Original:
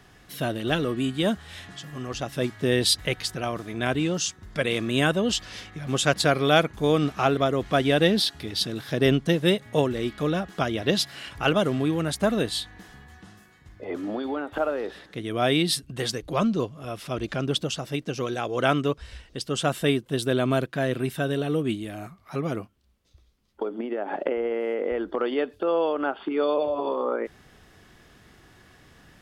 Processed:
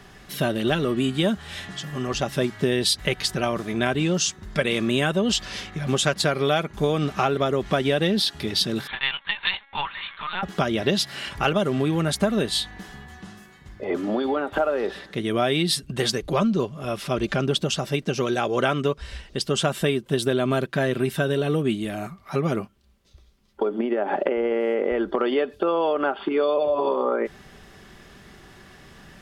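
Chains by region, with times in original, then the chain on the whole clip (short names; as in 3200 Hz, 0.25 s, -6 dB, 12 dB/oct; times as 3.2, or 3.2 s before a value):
8.87–10.43 expander -40 dBFS + steep high-pass 760 Hz 72 dB/oct + LPC vocoder at 8 kHz pitch kept
whole clip: high shelf 10000 Hz -3.5 dB; comb 5.1 ms, depth 35%; compressor, threshold -24 dBFS; gain +6 dB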